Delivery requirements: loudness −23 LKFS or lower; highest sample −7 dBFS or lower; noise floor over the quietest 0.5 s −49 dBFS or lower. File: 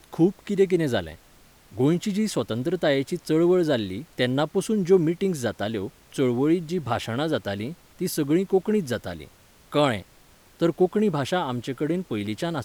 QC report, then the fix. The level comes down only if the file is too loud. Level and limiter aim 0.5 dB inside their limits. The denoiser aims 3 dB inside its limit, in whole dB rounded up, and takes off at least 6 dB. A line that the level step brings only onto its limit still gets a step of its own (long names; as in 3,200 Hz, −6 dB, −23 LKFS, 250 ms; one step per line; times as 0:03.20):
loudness −24.5 LKFS: in spec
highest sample −8.0 dBFS: in spec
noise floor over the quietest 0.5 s −54 dBFS: in spec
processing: no processing needed